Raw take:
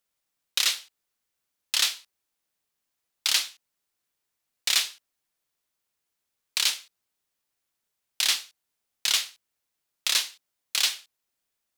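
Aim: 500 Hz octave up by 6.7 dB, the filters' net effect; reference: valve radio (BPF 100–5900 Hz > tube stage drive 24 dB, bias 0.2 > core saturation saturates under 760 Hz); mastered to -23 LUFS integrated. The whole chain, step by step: BPF 100–5900 Hz; bell 500 Hz +8.5 dB; tube stage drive 24 dB, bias 0.2; core saturation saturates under 760 Hz; gain +12 dB

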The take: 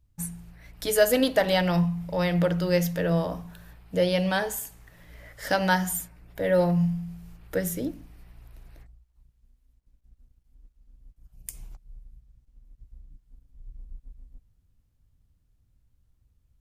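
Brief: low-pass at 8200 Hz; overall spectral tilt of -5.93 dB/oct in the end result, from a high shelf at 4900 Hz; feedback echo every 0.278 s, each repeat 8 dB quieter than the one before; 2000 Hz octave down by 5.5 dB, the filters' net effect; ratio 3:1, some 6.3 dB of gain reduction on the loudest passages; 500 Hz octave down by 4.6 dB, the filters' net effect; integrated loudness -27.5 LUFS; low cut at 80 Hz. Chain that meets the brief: HPF 80 Hz; LPF 8200 Hz; bell 500 Hz -5 dB; bell 2000 Hz -6 dB; high shelf 4900 Hz -6 dB; compressor 3:1, threshold -28 dBFS; feedback echo 0.278 s, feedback 40%, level -8 dB; gain +5 dB

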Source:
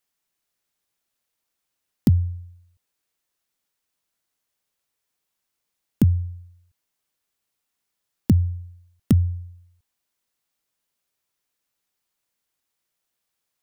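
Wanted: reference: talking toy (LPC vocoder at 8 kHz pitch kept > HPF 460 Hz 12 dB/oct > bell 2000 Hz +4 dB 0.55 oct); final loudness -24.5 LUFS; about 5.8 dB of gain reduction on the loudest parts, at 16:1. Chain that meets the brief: compressor 16:1, threshold -17 dBFS; LPC vocoder at 8 kHz pitch kept; HPF 460 Hz 12 dB/oct; bell 2000 Hz +4 dB 0.55 oct; gain +19.5 dB

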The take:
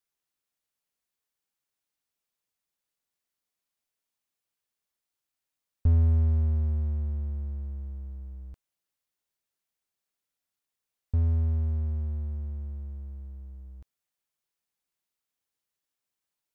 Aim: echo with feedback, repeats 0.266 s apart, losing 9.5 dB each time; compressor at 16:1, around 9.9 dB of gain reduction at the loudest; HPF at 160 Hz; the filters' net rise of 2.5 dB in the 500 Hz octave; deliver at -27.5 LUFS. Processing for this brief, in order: HPF 160 Hz; bell 500 Hz +3.5 dB; compressor 16:1, threshold -37 dBFS; feedback echo 0.266 s, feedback 33%, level -9.5 dB; gain +18.5 dB

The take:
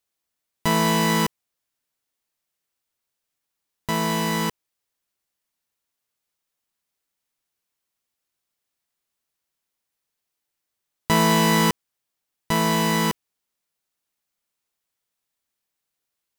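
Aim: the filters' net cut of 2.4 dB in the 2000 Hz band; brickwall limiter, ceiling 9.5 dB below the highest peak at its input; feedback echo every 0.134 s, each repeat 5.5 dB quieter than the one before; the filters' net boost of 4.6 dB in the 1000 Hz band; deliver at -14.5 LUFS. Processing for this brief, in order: bell 1000 Hz +5.5 dB; bell 2000 Hz -4 dB; limiter -15.5 dBFS; feedback echo 0.134 s, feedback 53%, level -5.5 dB; gain +11 dB

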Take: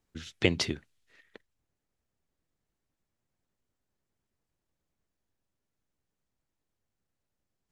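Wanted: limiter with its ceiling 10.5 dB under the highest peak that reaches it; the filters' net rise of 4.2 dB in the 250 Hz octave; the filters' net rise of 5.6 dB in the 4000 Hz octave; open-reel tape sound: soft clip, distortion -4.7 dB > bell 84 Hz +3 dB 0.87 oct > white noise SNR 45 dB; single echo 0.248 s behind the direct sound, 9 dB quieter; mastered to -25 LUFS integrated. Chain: bell 250 Hz +5.5 dB; bell 4000 Hz +7.5 dB; limiter -12.5 dBFS; echo 0.248 s -9 dB; soft clip -31 dBFS; bell 84 Hz +3 dB 0.87 oct; white noise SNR 45 dB; gain +13 dB

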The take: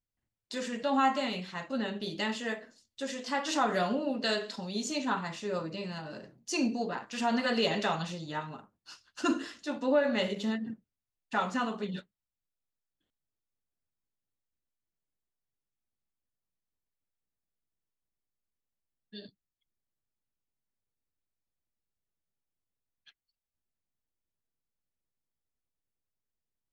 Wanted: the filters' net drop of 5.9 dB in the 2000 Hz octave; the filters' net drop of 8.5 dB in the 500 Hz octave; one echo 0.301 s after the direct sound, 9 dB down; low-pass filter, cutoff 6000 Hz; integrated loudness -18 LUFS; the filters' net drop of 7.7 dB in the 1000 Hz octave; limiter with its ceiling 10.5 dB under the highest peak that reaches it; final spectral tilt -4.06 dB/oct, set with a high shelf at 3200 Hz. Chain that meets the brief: LPF 6000 Hz; bell 500 Hz -8.5 dB; bell 1000 Hz -6 dB; bell 2000 Hz -7 dB; high shelf 3200 Hz +5 dB; limiter -29 dBFS; echo 0.301 s -9 dB; gain +20.5 dB

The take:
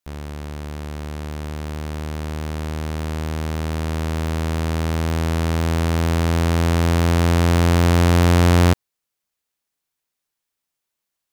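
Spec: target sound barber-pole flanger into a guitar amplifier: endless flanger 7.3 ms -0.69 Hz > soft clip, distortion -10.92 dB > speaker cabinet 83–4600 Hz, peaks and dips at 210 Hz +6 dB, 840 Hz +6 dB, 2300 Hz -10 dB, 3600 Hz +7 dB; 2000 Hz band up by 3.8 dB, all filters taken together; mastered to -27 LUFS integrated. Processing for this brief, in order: bell 2000 Hz +8 dB; endless flanger 7.3 ms -0.69 Hz; soft clip -17.5 dBFS; speaker cabinet 83–4600 Hz, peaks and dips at 210 Hz +6 dB, 840 Hz +6 dB, 2300 Hz -10 dB, 3600 Hz +7 dB

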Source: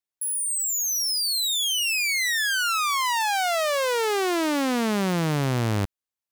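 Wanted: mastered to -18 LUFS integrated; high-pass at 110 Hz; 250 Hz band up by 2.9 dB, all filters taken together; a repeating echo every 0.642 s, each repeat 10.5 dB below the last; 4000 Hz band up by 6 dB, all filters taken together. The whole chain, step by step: HPF 110 Hz; bell 250 Hz +4 dB; bell 4000 Hz +7.5 dB; feedback echo 0.642 s, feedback 30%, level -10.5 dB; gain +1.5 dB

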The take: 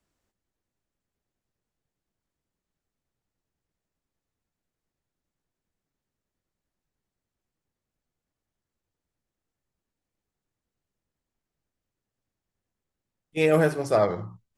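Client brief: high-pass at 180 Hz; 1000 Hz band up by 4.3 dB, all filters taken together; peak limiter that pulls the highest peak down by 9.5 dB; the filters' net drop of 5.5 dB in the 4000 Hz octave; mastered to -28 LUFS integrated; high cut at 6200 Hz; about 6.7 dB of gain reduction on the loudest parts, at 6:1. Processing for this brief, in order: HPF 180 Hz; LPF 6200 Hz; bell 1000 Hz +6.5 dB; bell 4000 Hz -7 dB; compressor 6:1, threshold -21 dBFS; gain +5.5 dB; limiter -17 dBFS

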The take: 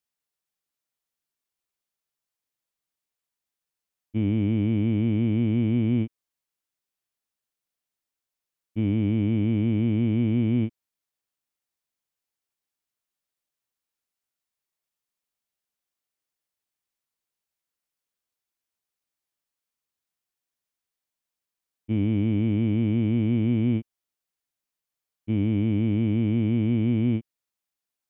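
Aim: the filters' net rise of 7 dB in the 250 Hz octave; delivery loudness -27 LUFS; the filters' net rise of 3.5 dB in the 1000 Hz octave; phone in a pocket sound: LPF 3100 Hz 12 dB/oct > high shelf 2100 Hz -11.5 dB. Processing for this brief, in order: LPF 3100 Hz 12 dB/oct; bell 250 Hz +8 dB; bell 1000 Hz +6.5 dB; high shelf 2100 Hz -11.5 dB; gain -8 dB

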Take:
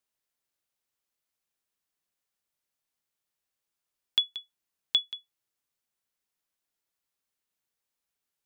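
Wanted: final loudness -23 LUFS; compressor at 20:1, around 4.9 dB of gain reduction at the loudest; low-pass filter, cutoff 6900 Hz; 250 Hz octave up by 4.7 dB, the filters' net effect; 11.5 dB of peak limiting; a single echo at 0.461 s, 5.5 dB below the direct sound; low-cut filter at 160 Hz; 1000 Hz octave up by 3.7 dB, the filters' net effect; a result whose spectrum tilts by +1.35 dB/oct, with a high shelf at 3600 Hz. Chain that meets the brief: HPF 160 Hz; LPF 6900 Hz; bell 250 Hz +7 dB; bell 1000 Hz +4 dB; high shelf 3600 Hz +4 dB; compressor 20:1, threshold -22 dBFS; limiter -22 dBFS; echo 0.461 s -5.5 dB; gain +16 dB

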